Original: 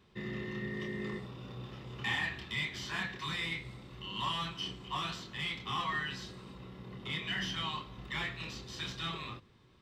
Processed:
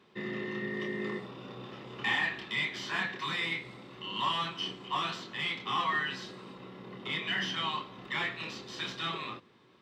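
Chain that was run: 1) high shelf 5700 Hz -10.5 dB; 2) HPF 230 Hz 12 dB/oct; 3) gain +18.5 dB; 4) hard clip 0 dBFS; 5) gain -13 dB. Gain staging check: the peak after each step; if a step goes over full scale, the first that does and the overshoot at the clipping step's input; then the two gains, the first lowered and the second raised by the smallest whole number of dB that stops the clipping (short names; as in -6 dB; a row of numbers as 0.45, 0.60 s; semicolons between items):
-23.0, -23.5, -5.0, -5.0, -18.0 dBFS; no overload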